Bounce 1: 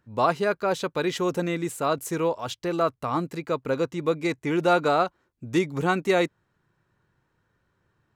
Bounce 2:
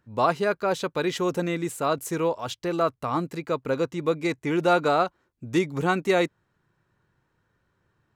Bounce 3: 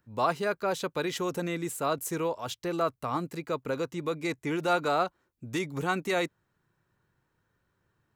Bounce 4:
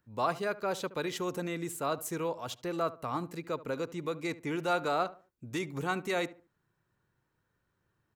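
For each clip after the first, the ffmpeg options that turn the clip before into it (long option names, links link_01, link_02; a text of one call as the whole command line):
ffmpeg -i in.wav -af anull out.wav
ffmpeg -i in.wav -filter_complex "[0:a]highshelf=frequency=9500:gain=8.5,acrossover=split=700|1000[link_01][link_02][link_03];[link_01]alimiter=limit=-21.5dB:level=0:latency=1[link_04];[link_04][link_02][link_03]amix=inputs=3:normalize=0,volume=-4dB" out.wav
ffmpeg -i in.wav -filter_complex "[0:a]asplit=2[link_01][link_02];[link_02]adelay=72,lowpass=frequency=1500:poles=1,volume=-16dB,asplit=2[link_03][link_04];[link_04]adelay=72,lowpass=frequency=1500:poles=1,volume=0.32,asplit=2[link_05][link_06];[link_06]adelay=72,lowpass=frequency=1500:poles=1,volume=0.32[link_07];[link_01][link_03][link_05][link_07]amix=inputs=4:normalize=0,volume=-3.5dB" out.wav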